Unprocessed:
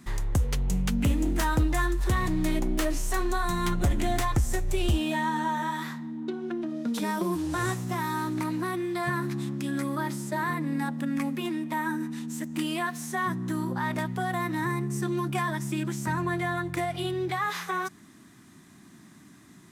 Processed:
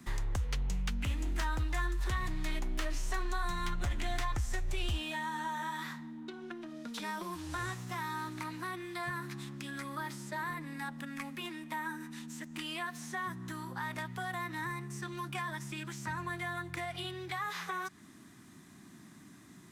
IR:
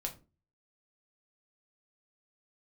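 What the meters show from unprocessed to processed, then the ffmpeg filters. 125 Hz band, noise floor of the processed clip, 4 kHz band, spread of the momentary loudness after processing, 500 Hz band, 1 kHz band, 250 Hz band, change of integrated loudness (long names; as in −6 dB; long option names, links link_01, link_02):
−10.0 dB, −55 dBFS, −4.5 dB, 9 LU, −13.0 dB, −8.0 dB, −14.0 dB, −9.0 dB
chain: -filter_complex "[0:a]acrossover=split=87|910|6000[link_01][link_02][link_03][link_04];[link_01]acompressor=threshold=-29dB:ratio=4[link_05];[link_02]acompressor=threshold=-43dB:ratio=4[link_06];[link_03]acompressor=threshold=-34dB:ratio=4[link_07];[link_04]acompressor=threshold=-54dB:ratio=4[link_08];[link_05][link_06][link_07][link_08]amix=inputs=4:normalize=0,volume=-2.5dB"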